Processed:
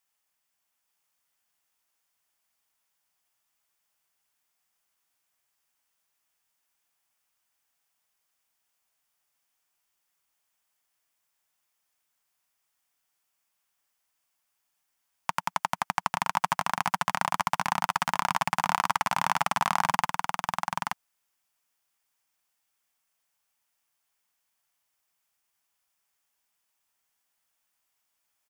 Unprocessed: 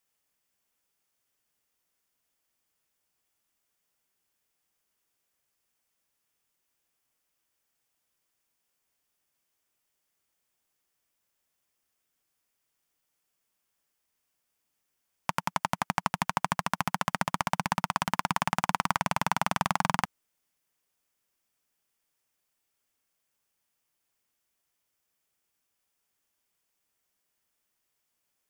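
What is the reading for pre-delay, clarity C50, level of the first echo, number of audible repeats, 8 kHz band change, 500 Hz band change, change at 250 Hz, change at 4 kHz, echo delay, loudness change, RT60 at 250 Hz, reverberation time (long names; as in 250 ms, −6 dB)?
no reverb audible, no reverb audible, −3.5 dB, 1, +1.5 dB, −0.5 dB, −5.0 dB, +1.5 dB, 878 ms, +1.5 dB, no reverb audible, no reverb audible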